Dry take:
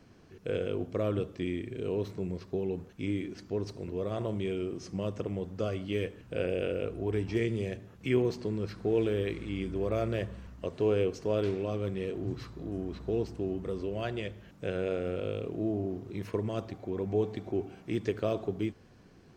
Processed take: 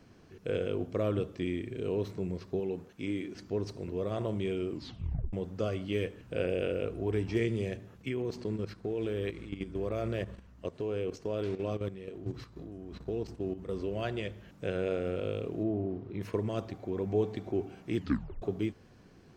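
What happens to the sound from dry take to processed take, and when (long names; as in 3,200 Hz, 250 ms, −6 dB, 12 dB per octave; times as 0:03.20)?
0:02.60–0:03.35: low-shelf EQ 110 Hz −12 dB
0:04.70: tape stop 0.63 s
0:07.98–0:13.73: output level in coarse steps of 11 dB
0:15.63–0:16.21: high-frequency loss of the air 240 metres
0:17.96: tape stop 0.46 s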